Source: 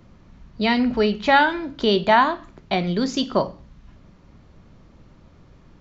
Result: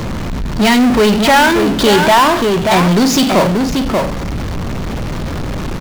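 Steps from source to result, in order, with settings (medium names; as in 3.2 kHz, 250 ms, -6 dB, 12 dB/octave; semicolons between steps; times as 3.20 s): echo from a far wall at 100 m, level -10 dB; power-law waveshaper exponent 0.35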